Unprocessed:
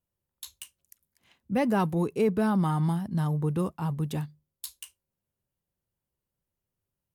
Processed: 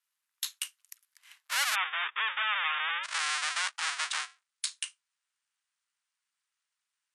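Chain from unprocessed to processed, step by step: square wave that keeps the level; inverse Chebyshev high-pass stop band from 210 Hz, stop band 80 dB; peak limiter -18.5 dBFS, peak gain reduction 6 dB; brick-wall FIR low-pass 13 kHz, from 1.74 s 3.7 kHz, from 3.03 s 10 kHz; trim +5.5 dB

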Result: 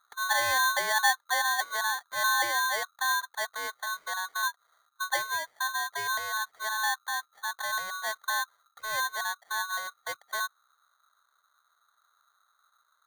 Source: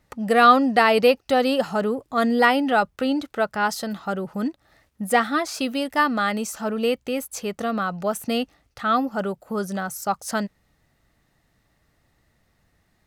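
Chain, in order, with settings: Gaussian low-pass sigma 15 samples; polarity switched at an audio rate 1.3 kHz; trim -3 dB

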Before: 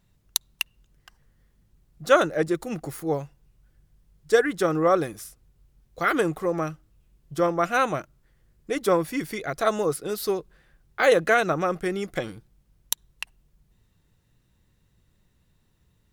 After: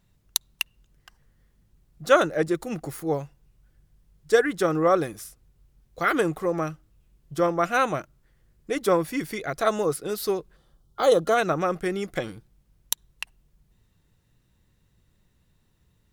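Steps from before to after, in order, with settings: time-frequency box 10.56–11.37 s, 1.4–2.9 kHz -14 dB

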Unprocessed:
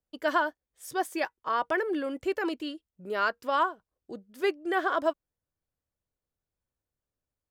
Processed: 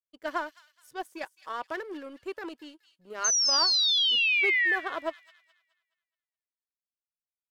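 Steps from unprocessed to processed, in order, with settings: power-law waveshaper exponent 1.4; painted sound fall, 3.24–4.76 s, 1.7–6.4 kHz -21 dBFS; feedback echo behind a high-pass 211 ms, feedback 36%, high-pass 3.4 kHz, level -9 dB; trim -3.5 dB

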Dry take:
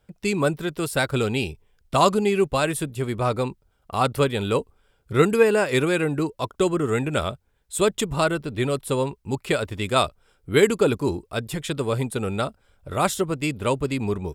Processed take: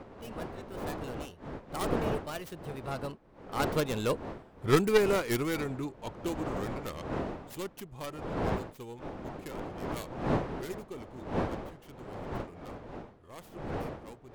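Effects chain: tracing distortion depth 0.45 ms; Doppler pass-by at 4.50 s, 37 m/s, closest 25 m; wind noise 590 Hz -33 dBFS; trim -5.5 dB

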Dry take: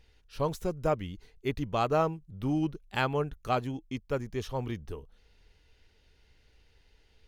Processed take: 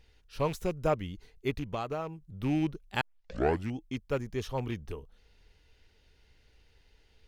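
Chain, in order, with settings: rattle on loud lows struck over -34 dBFS, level -34 dBFS; 1.50–2.35 s: compression 10:1, threshold -31 dBFS, peak gain reduction 10.5 dB; 3.01 s: tape start 0.77 s

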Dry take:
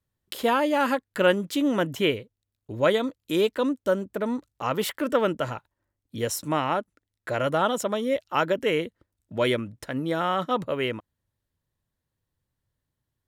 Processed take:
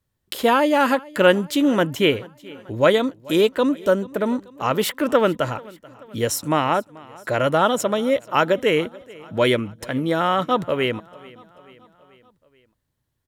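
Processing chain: feedback delay 435 ms, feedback 57%, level -22.5 dB; trim +5.5 dB

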